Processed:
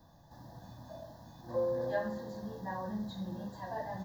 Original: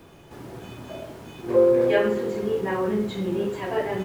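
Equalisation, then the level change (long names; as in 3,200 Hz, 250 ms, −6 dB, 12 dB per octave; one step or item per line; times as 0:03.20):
Butterworth band-reject 2,300 Hz, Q 1.7
phaser with its sweep stopped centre 2,000 Hz, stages 8
−7.5 dB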